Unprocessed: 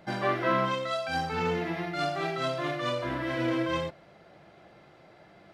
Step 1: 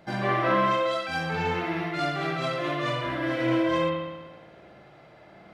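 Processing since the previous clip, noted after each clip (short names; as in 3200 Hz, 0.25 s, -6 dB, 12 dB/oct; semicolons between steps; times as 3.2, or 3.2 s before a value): spring tank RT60 1.2 s, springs 55 ms, chirp 70 ms, DRR -1.5 dB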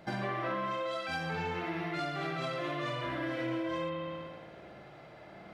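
compressor 5:1, threshold -33 dBFS, peak gain reduction 12.5 dB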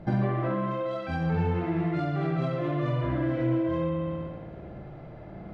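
tilt -4.5 dB/oct; gain +1.5 dB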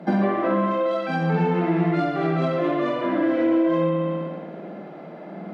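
Chebyshev high-pass 170 Hz, order 6; gain +8.5 dB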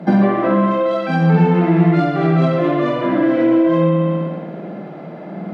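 bell 110 Hz +10.5 dB 1.2 oct; gain +5 dB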